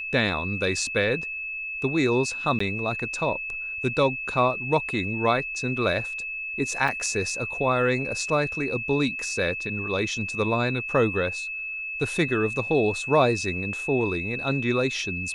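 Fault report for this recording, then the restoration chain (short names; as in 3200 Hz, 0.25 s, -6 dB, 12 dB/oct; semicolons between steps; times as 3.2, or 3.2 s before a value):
tone 2600 Hz -30 dBFS
2.59–2.6 gap 14 ms
6.88 gap 3.7 ms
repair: notch 2600 Hz, Q 30; interpolate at 2.59, 14 ms; interpolate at 6.88, 3.7 ms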